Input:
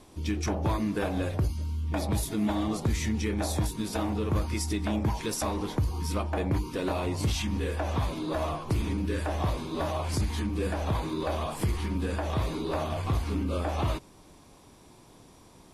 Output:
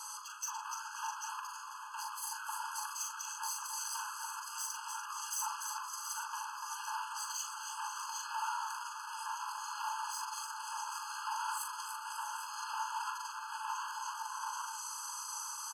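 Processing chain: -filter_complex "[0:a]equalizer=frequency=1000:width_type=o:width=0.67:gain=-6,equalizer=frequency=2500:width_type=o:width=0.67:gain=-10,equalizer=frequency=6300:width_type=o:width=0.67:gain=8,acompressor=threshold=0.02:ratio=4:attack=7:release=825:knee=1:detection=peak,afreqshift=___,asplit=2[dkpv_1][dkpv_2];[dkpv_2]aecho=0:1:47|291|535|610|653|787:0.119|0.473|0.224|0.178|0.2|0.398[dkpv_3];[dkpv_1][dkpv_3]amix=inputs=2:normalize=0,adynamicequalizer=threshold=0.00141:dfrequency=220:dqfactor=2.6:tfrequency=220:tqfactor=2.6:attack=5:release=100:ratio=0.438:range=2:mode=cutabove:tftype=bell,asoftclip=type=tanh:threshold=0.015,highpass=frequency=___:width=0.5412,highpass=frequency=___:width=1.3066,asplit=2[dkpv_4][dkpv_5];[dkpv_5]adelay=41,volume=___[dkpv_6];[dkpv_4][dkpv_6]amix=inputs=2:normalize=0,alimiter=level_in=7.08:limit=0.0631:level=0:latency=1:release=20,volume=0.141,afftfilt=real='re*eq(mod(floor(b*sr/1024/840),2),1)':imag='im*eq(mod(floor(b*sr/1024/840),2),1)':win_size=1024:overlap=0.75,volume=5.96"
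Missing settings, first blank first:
260, 42, 42, 0.596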